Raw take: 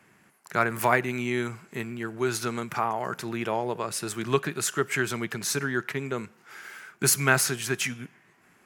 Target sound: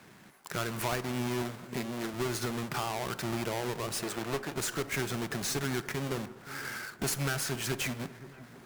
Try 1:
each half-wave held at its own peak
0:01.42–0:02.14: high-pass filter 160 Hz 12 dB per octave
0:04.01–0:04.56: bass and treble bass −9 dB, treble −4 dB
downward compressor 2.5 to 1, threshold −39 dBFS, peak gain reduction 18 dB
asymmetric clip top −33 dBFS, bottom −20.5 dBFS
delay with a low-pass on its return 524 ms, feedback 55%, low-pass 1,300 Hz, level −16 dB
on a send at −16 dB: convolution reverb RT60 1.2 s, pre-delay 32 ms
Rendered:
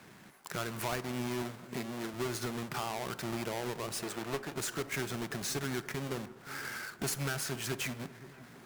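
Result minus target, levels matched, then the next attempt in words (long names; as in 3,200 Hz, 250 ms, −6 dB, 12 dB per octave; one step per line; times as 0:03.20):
downward compressor: peak gain reduction +4 dB
each half-wave held at its own peak
0:01.42–0:02.14: high-pass filter 160 Hz 12 dB per octave
0:04.01–0:04.56: bass and treble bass −9 dB, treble −4 dB
downward compressor 2.5 to 1, threshold −32.5 dBFS, peak gain reduction 14 dB
asymmetric clip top −33 dBFS, bottom −20.5 dBFS
delay with a low-pass on its return 524 ms, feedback 55%, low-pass 1,300 Hz, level −16 dB
on a send at −16 dB: convolution reverb RT60 1.2 s, pre-delay 32 ms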